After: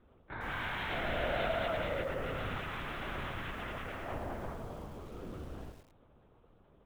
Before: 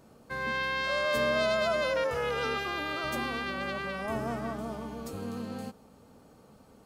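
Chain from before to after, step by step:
linear-prediction vocoder at 8 kHz whisper
feedback echo at a low word length 108 ms, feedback 35%, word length 8 bits, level −7 dB
level −7 dB

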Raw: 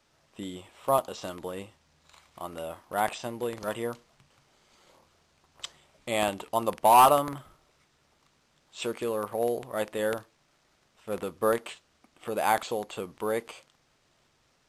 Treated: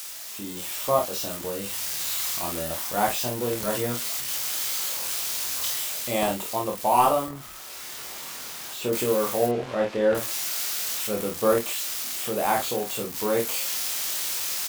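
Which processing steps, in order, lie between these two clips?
spike at every zero crossing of −21 dBFS
0:07.26–0:08.93: high-shelf EQ 2,200 Hz −10.5 dB
0:09.46–0:10.15: low-pass filter 2,900 Hz 12 dB per octave
ambience of single reflections 24 ms −3 dB, 50 ms −6 dB
automatic gain control gain up to 11.5 dB
tilt shelving filter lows +3.5 dB, about 690 Hz
one half of a high-frequency compander encoder only
level −7.5 dB

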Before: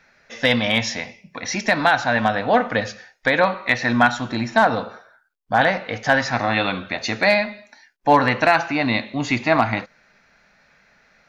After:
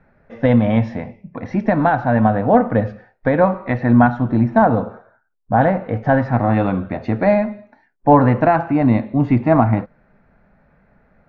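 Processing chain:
low-pass filter 1,000 Hz 12 dB per octave
low-shelf EQ 260 Hz +11 dB
level +2.5 dB

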